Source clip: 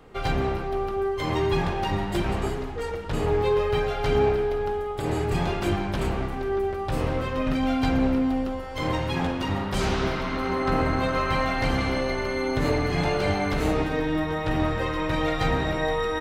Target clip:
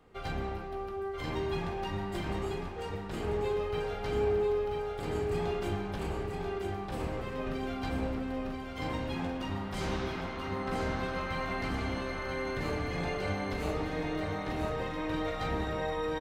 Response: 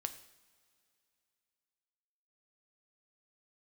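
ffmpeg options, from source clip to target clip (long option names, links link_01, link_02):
-filter_complex "[0:a]aecho=1:1:987|1974|2961|3948|4935:0.562|0.214|0.0812|0.0309|0.0117[link_01];[1:a]atrim=start_sample=2205,asetrate=66150,aresample=44100[link_02];[link_01][link_02]afir=irnorm=-1:irlink=0,volume=-5.5dB"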